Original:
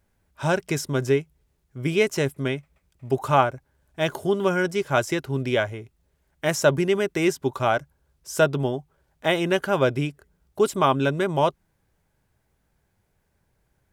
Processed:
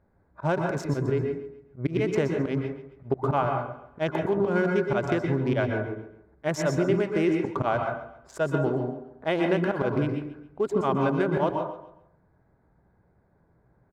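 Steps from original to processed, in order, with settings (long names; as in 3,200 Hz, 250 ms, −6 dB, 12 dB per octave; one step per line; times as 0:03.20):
adaptive Wiener filter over 15 samples
low-pass filter 1,600 Hz 6 dB per octave
low-shelf EQ 83 Hz −10 dB
volume swells 117 ms
downward compressor, threshold −30 dBFS, peak gain reduction 12.5 dB
repeating echo 137 ms, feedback 37%, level −15 dB
on a send at −3 dB: convolution reverb RT60 0.50 s, pre-delay 112 ms
on the sum: level +7.5 dB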